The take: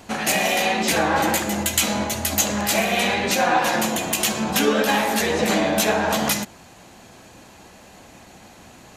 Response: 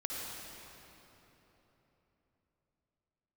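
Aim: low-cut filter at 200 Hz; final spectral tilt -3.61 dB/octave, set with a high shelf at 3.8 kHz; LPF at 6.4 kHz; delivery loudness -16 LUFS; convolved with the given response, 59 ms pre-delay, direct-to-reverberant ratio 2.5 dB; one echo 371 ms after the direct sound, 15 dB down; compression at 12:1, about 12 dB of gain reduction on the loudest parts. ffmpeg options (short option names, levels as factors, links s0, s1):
-filter_complex "[0:a]highpass=200,lowpass=6400,highshelf=f=3800:g=-9,acompressor=threshold=0.0447:ratio=12,aecho=1:1:371:0.178,asplit=2[s0][s1];[1:a]atrim=start_sample=2205,adelay=59[s2];[s1][s2]afir=irnorm=-1:irlink=0,volume=0.562[s3];[s0][s3]amix=inputs=2:normalize=0,volume=4.22"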